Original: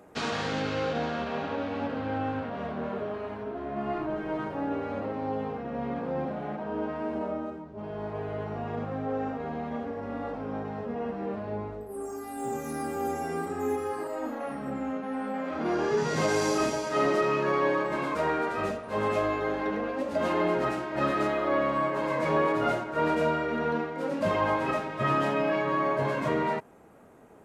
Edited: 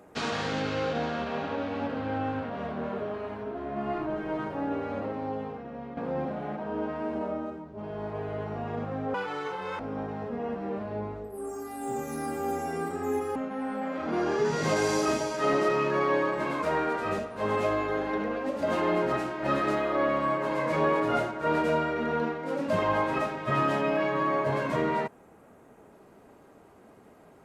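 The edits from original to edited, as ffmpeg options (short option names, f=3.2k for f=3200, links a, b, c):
-filter_complex "[0:a]asplit=5[a][b][c][d][e];[a]atrim=end=5.97,asetpts=PTS-STARTPTS,afade=t=out:st=5.04:d=0.93:silence=0.334965[f];[b]atrim=start=5.97:end=9.144,asetpts=PTS-STARTPTS,afade=t=in:d=0.004:c=hsin:silence=0.334965[g];[c]atrim=start=9.14:end=10.36,asetpts=PTS-STARTPTS,asetrate=82026,aresample=44100[h];[d]atrim=start=10.356:end=13.922[i];[e]atrim=start=14.878[j];[f][g]concat=n=2:v=0:a=1[k];[k][h]acrossfade=d=0.004:c1=hsin:c2=hsin[l];[l][i]acrossfade=d=0.004:c1=hsin:c2=hsin[m];[m][j]acrossfade=d=0.004:c1=hsin:c2=hsin"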